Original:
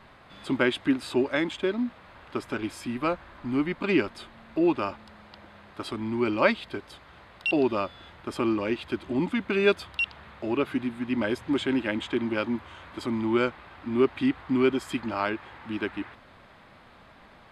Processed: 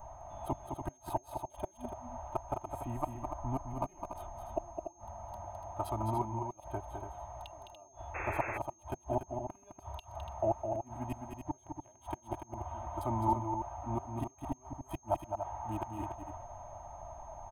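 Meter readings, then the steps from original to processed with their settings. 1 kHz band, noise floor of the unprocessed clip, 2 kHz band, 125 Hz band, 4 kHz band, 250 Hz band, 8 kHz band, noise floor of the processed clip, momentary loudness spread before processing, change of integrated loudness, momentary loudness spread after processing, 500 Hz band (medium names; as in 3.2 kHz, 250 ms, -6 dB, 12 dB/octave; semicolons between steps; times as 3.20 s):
-1.5 dB, -53 dBFS, -18.5 dB, -1.5 dB, -24.0 dB, -16.0 dB, no reading, -63 dBFS, 13 LU, -11.5 dB, 13 LU, -12.0 dB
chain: local Wiener filter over 9 samples; inverted gate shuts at -19 dBFS, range -35 dB; treble shelf 9.2 kHz -11.5 dB; comb 3.2 ms, depth 71%; whistle 6.4 kHz -56 dBFS; FFT filter 140 Hz 0 dB, 240 Hz -21 dB, 500 Hz -15 dB, 750 Hz +9 dB, 1.6 kHz -24 dB, 6.4 kHz -16 dB, 11 kHz +10 dB; loudspeakers at several distances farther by 72 m -6 dB, 99 m -8 dB; painted sound noise, 8.14–8.58 s, 310–2700 Hz -46 dBFS; trim +6 dB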